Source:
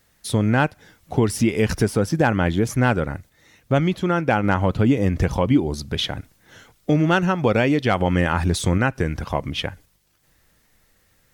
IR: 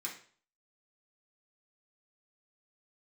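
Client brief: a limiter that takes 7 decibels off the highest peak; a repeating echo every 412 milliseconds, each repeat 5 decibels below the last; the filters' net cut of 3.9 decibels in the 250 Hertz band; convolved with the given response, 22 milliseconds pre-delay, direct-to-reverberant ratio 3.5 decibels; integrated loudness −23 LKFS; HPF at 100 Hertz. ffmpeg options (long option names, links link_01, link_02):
-filter_complex "[0:a]highpass=100,equalizer=frequency=250:width_type=o:gain=-5,alimiter=limit=-12dB:level=0:latency=1,aecho=1:1:412|824|1236|1648|2060|2472|2884:0.562|0.315|0.176|0.0988|0.0553|0.031|0.0173,asplit=2[link_01][link_02];[1:a]atrim=start_sample=2205,adelay=22[link_03];[link_02][link_03]afir=irnorm=-1:irlink=0,volume=-3.5dB[link_04];[link_01][link_04]amix=inputs=2:normalize=0"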